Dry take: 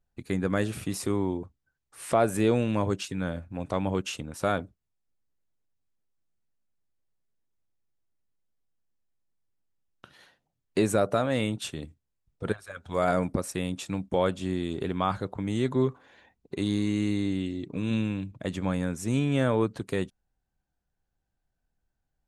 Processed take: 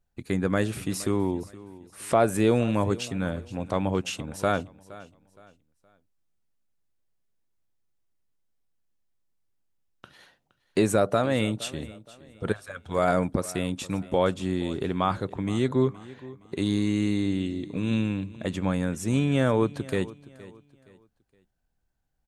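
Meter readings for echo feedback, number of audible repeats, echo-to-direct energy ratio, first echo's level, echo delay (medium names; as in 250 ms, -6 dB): 33%, 2, -18.5 dB, -19.0 dB, 468 ms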